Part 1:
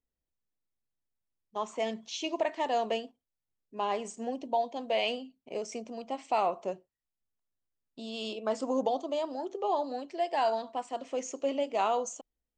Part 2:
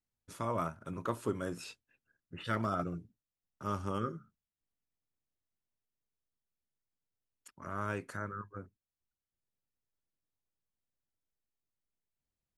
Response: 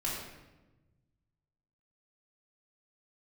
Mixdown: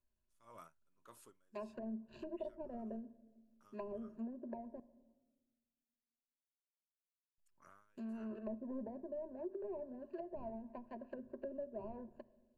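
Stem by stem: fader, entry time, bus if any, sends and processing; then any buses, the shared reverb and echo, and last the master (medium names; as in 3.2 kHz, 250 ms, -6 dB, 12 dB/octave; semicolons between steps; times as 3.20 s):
-2.0 dB, 0.00 s, muted 4.80–7.38 s, send -22 dB, median filter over 41 samples; low-pass that closes with the level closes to 430 Hz, closed at -33.5 dBFS; rippled EQ curve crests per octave 1.4, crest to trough 16 dB
-17.0 dB, 0.00 s, no send, tilt EQ +3 dB/octave; logarithmic tremolo 1.7 Hz, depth 27 dB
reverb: on, RT60 1.1 s, pre-delay 3 ms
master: compression 1.5:1, threshold -56 dBFS, peak gain reduction 9.5 dB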